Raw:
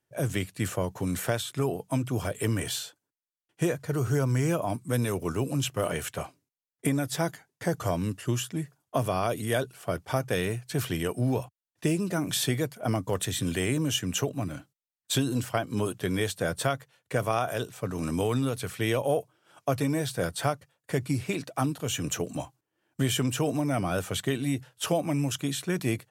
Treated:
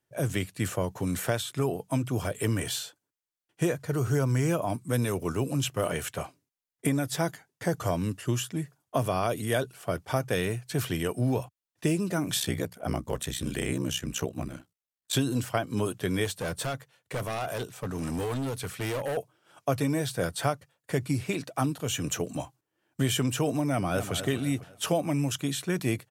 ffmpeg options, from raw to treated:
ffmpeg -i in.wav -filter_complex "[0:a]asettb=1/sr,asplit=3[link_01][link_02][link_03];[link_01]atrim=end=12.394[link_04];[link_02]atrim=start=12.39:end=15.13,asetpts=PTS-STARTPTS,afade=type=in:duration=0.004:curve=qsin,afade=type=out:start_time=2.736:duration=0.004:curve=qsin,aeval=exprs='val(0)*sin(2*PI*32*n/s)':channel_layout=same[link_05];[link_03]atrim=start=15.126[link_06];[link_04][link_05]acrossfade=duration=0.004:curve1=hsin:curve2=qsin[link_07];[link_07][link_06]acrossfade=duration=0.004:curve1=qsin:curve2=hsin,asettb=1/sr,asplit=3[link_08][link_09][link_10];[link_08]atrim=end=16.254[link_11];[link_09]atrim=start=16.25:end=19.17,asetpts=PTS-STARTPTS,afade=type=in:duration=0.004:curve=qsin,afade=type=out:start_time=2.916:duration=0.004:curve=qsin,asoftclip=type=hard:threshold=-28dB[link_12];[link_10]atrim=start=19.166[link_13];[link_11][link_12]acrossfade=duration=0.004:curve1=hsin:curve2=qsin[link_14];[link_14][link_13]acrossfade=duration=0.004:curve1=qsin:curve2=hsin,asplit=2[link_15][link_16];[link_16]afade=type=in:start_time=23.69:duration=0.01,afade=type=out:start_time=24.14:duration=0.01,aecho=0:1:250|500|750|1000:0.316228|0.126491|0.0505964|0.0202386[link_17];[link_15][link_17]amix=inputs=2:normalize=0" out.wav

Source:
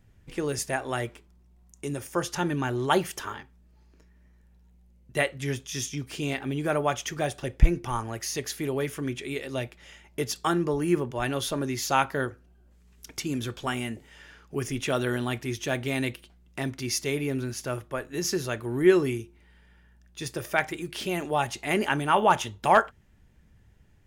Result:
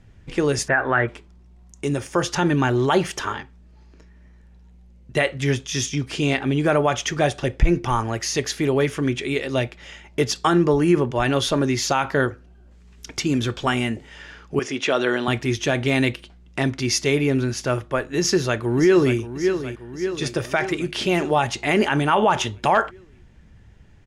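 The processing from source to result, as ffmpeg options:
ffmpeg -i in.wav -filter_complex "[0:a]asplit=3[link_01][link_02][link_03];[link_01]afade=type=out:start_time=0.67:duration=0.02[link_04];[link_02]lowpass=frequency=1600:width_type=q:width=3.8,afade=type=in:start_time=0.67:duration=0.02,afade=type=out:start_time=1.07:duration=0.02[link_05];[link_03]afade=type=in:start_time=1.07:duration=0.02[link_06];[link_04][link_05][link_06]amix=inputs=3:normalize=0,asettb=1/sr,asplit=3[link_07][link_08][link_09];[link_07]atrim=end=14.594[link_10];[link_08]atrim=start=14.59:end=15.28,asetpts=PTS-STARTPTS,afade=type=in:duration=0.004:curve=qsin,afade=type=out:start_time=0.686:duration=0.004:curve=qsin,highpass=310,lowpass=6400[link_11];[link_09]atrim=start=15.276[link_12];[link_10][link_11]acrossfade=duration=0.004:curve1=hsin:curve2=qsin[link_13];[link_13][link_12]acrossfade=duration=0.004:curve1=qsin:curve2=hsin,asplit=2[link_14][link_15];[link_15]afade=type=in:start_time=18.19:duration=0.01,afade=type=out:start_time=19.17:duration=0.01,aecho=0:1:580|1160|1740|2320|2900|3480|4060:0.266073|0.159644|0.0957861|0.0574717|0.034483|0.0206898|0.0124139[link_16];[link_14][link_16]amix=inputs=2:normalize=0,lowpass=6700,alimiter=level_in=16dB:limit=-1dB:release=50:level=0:latency=1,volume=-7dB" out.wav

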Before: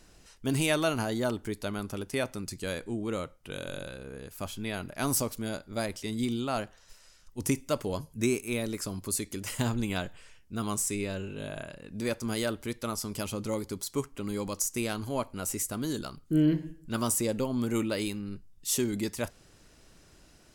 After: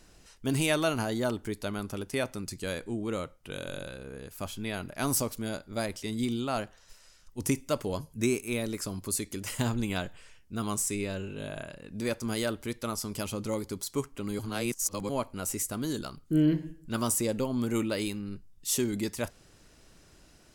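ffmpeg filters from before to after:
ffmpeg -i in.wav -filter_complex "[0:a]asplit=3[link_01][link_02][link_03];[link_01]atrim=end=14.392[link_04];[link_02]atrim=start=14.388:end=15.092,asetpts=PTS-STARTPTS,areverse[link_05];[link_03]atrim=start=15.088[link_06];[link_04][link_05]acrossfade=duration=0.004:curve1=hsin:curve2=hsin[link_07];[link_07][link_06]acrossfade=duration=0.004:curve1=hsin:curve2=hsin" out.wav

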